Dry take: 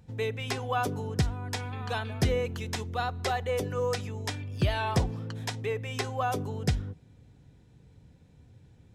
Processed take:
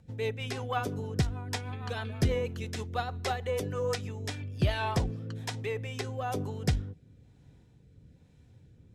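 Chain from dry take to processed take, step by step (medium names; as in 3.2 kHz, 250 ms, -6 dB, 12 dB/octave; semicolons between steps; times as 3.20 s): rotary cabinet horn 6.3 Hz, later 1.1 Hz, at 3.83 s; Chebyshev shaper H 6 -29 dB, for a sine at -13 dBFS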